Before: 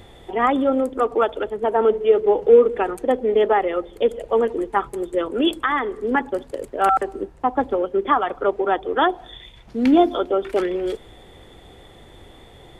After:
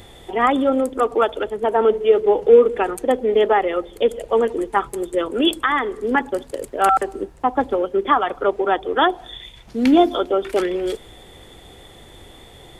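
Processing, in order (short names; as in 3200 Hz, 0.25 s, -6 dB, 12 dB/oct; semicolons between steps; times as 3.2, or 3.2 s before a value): high shelf 3700 Hz +8.5 dB; gain +1 dB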